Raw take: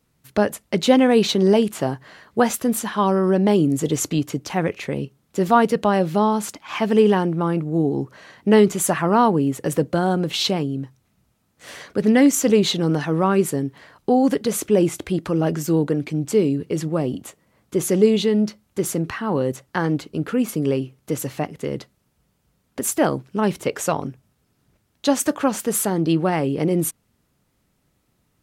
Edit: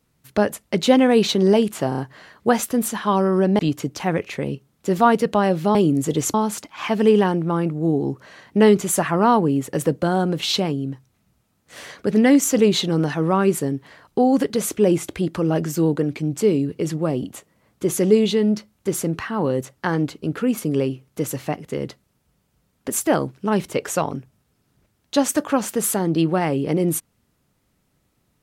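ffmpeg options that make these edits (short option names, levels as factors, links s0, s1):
-filter_complex "[0:a]asplit=7[s0][s1][s2][s3][s4][s5][s6];[s0]atrim=end=1.922[s7];[s1]atrim=start=1.888:end=1.922[s8];[s2]atrim=start=1.888:end=1.922[s9];[s3]atrim=start=1.888:end=3.502[s10];[s4]atrim=start=4.088:end=6.252[s11];[s5]atrim=start=3.498:end=4.092[s12];[s6]atrim=start=6.248[s13];[s7][s8]acrossfade=d=0.004:c1=hsin:c2=hsin[s14];[s14][s9]acrossfade=d=0.004:c1=hsin:c2=hsin[s15];[s15][s10]acrossfade=d=0.004:c1=hsin:c2=hsin[s16];[s16][s11]acrossfade=d=0.004:c1=hsin:c2=hsin[s17];[s17][s12]acrossfade=d=0.004:c1=hsin:c2=hsin[s18];[s18][s13]acrossfade=d=0.004:c1=hsin:c2=hsin"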